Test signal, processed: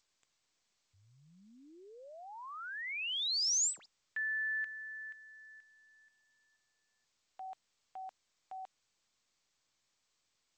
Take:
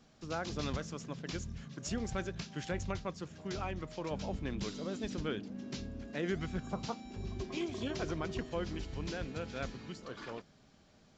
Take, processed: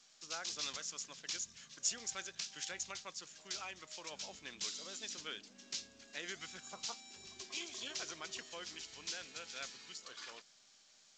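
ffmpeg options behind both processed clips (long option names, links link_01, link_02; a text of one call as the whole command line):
ffmpeg -i in.wav -filter_complex "[0:a]crystalizer=i=0.5:c=0,aderivative,asplit=2[link_01][link_02];[link_02]asoftclip=type=hard:threshold=-40dB,volume=-5dB[link_03];[link_01][link_03]amix=inputs=2:normalize=0,volume=5dB" -ar 16000 -c:a g722 out.g722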